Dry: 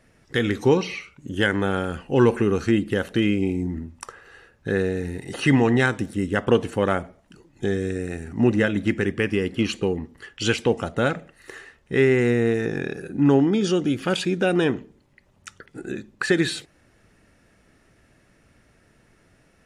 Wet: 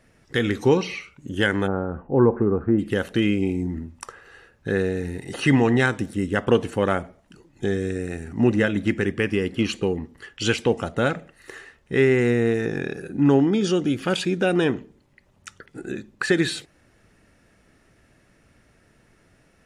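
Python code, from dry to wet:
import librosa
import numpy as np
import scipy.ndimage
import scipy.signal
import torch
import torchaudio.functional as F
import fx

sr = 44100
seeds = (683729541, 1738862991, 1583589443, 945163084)

y = fx.lowpass(x, sr, hz=1200.0, slope=24, at=(1.66, 2.78), fade=0.02)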